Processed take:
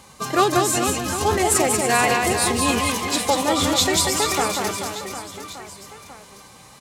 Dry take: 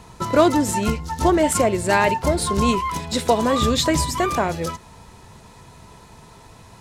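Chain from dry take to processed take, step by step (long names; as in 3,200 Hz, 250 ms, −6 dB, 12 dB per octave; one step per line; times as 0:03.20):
spectral tilt +2 dB per octave
phase-vocoder pitch shift with formants kept +3 semitones
reverse bouncing-ball delay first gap 190 ms, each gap 1.3×, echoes 5
level −1.5 dB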